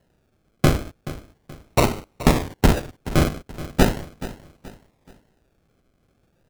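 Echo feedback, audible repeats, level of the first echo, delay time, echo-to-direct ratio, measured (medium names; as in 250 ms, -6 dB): 36%, 3, -15.5 dB, 427 ms, -15.0 dB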